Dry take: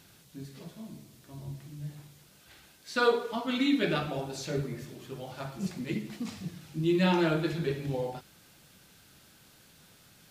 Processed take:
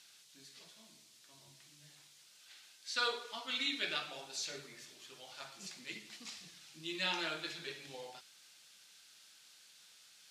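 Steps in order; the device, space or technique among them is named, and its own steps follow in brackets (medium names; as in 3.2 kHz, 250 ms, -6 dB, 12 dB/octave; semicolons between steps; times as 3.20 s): piezo pickup straight into a mixer (low-pass 5.4 kHz 12 dB/octave; differentiator); trim +7 dB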